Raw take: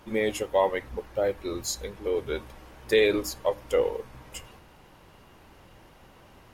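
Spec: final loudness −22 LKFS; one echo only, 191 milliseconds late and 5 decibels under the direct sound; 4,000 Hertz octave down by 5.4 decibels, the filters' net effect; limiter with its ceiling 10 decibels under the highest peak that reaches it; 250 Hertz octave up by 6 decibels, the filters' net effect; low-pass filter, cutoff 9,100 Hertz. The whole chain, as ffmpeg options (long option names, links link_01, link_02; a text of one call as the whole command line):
ffmpeg -i in.wav -af "lowpass=9100,equalizer=frequency=250:width_type=o:gain=8.5,equalizer=frequency=4000:width_type=o:gain=-6.5,alimiter=limit=-19dB:level=0:latency=1,aecho=1:1:191:0.562,volume=8dB" out.wav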